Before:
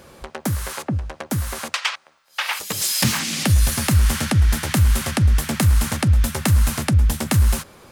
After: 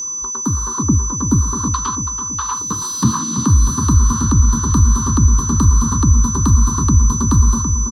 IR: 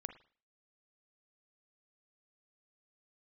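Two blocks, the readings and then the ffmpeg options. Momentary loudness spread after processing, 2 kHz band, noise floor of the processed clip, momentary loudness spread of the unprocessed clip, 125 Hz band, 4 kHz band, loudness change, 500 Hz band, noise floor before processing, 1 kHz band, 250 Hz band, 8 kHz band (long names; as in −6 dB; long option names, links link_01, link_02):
6 LU, −11.5 dB, −24 dBFS, 9 LU, +4.5 dB, −8.5 dB, +4.5 dB, −2.5 dB, −54 dBFS, +6.5 dB, +7.0 dB, +10.5 dB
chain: -filter_complex "[0:a]firequalizer=gain_entry='entry(180,0);entry(290,6);entry(710,-26);entry(1000,15);entry(2100,-27);entry(4200,0);entry(6000,-23);entry(8600,-12);entry(13000,-17)':delay=0.05:min_phase=1,asplit=2[link_01][link_02];[link_02]adelay=330,lowpass=frequency=1700:poles=1,volume=-7dB,asplit=2[link_03][link_04];[link_04]adelay=330,lowpass=frequency=1700:poles=1,volume=0.52,asplit=2[link_05][link_06];[link_06]adelay=330,lowpass=frequency=1700:poles=1,volume=0.52,asplit=2[link_07][link_08];[link_08]adelay=330,lowpass=frequency=1700:poles=1,volume=0.52,asplit=2[link_09][link_10];[link_10]adelay=330,lowpass=frequency=1700:poles=1,volume=0.52,asplit=2[link_11][link_12];[link_12]adelay=330,lowpass=frequency=1700:poles=1,volume=0.52[link_13];[link_01][link_03][link_05][link_07][link_09][link_11][link_13]amix=inputs=7:normalize=0,aeval=exprs='val(0)+0.1*sin(2*PI*6000*n/s)':channel_layout=same,acrossover=split=440|1200[link_14][link_15][link_16];[link_14]dynaudnorm=framelen=130:gausssize=9:maxgain=11.5dB[link_17];[link_17][link_15][link_16]amix=inputs=3:normalize=0,volume=-1.5dB"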